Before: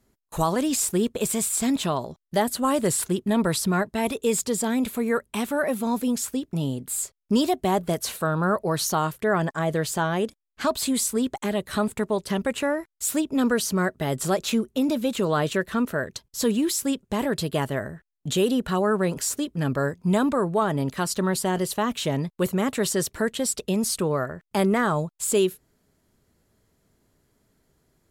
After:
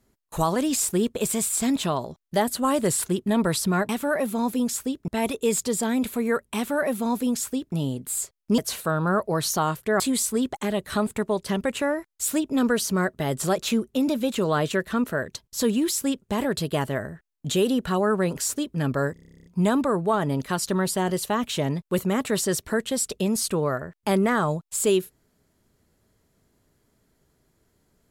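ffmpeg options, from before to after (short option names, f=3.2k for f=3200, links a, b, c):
-filter_complex "[0:a]asplit=16[a][b][c][d][e][f][g][h][i][j][k][l][m][n][o][p];[a]atrim=end=3.892[q];[b]atrim=start=5.368:end=6.562[r];[c]atrim=start=3.888:end=7.392[s];[d]atrim=start=7.938:end=9.362[t];[e]atrim=start=10.808:end=19.972[u];[f]atrim=start=19.938:end=19.972[v];[g]atrim=start=19.938:end=19.972[w];[h]atrim=start=19.938:end=19.972[x];[i]atrim=start=19.938:end=19.972[y];[j]atrim=start=19.938:end=19.972[z];[k]atrim=start=19.938:end=19.972[aa];[l]atrim=start=19.938:end=19.972[ab];[m]atrim=start=19.938:end=19.972[ac];[n]atrim=start=19.938:end=19.972[ad];[o]atrim=start=19.938:end=19.972[ae];[p]atrim=start=19.938[af];[q][r]acrossfade=d=0.004:c1=hsin:c2=hsin[ag];[ag][s]acrossfade=d=0.004:c1=hsin:c2=hsin[ah];[ah][t]acrossfade=d=0.004:c1=hsin:c2=hsin[ai];[ai][u]acrossfade=d=0.004:c1=hsin:c2=hsin[aj];[aj][v]acrossfade=d=0.004:c1=hsin:c2=hsin[ak];[ak][w]acrossfade=d=0.004:c1=hsin:c2=hsin[al];[al][x]acrossfade=d=0.004:c1=hsin:c2=hsin[am];[am][y]acrossfade=d=0.004:c1=hsin:c2=hsin[an];[an][z]acrossfade=d=0.004:c1=hsin:c2=hsin[ao];[ao][aa]acrossfade=d=0.004:c1=hsin:c2=hsin[ap];[ap][ab]acrossfade=d=0.004:c1=hsin:c2=hsin[aq];[aq][ac]acrossfade=d=0.004:c1=hsin:c2=hsin[ar];[ar][ad]acrossfade=d=0.004:c1=hsin:c2=hsin[as];[as][ae]acrossfade=d=0.004:c1=hsin:c2=hsin[at];[at][af]acrossfade=d=0.004:c1=hsin:c2=hsin"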